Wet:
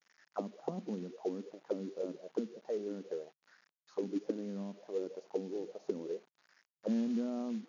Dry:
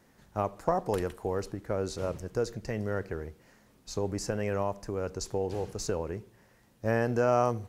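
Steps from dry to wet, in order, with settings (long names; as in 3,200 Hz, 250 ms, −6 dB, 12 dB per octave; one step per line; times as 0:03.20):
envelope filter 220–1,900 Hz, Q 6.3, down, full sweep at −26 dBFS
log-companded quantiser 6 bits
brick-wall band-pass 140–7,000 Hz
level +4.5 dB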